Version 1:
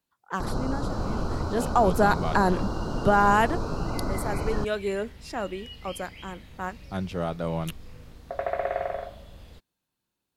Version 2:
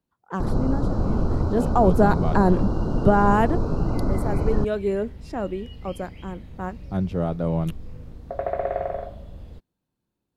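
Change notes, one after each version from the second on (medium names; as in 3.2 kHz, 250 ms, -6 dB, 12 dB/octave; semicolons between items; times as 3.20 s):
master: add tilt shelf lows +7.5 dB, about 890 Hz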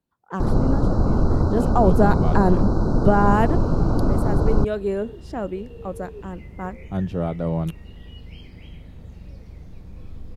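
first sound +4.0 dB; second sound: entry +2.45 s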